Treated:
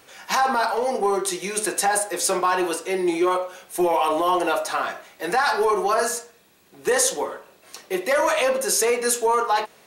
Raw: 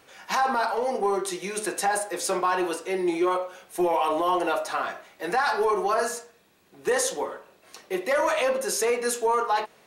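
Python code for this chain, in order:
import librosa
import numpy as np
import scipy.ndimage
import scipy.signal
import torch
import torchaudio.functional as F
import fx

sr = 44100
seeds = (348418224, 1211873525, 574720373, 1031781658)

y = fx.high_shelf(x, sr, hz=4600.0, db=5.5)
y = F.gain(torch.from_numpy(y), 3.0).numpy()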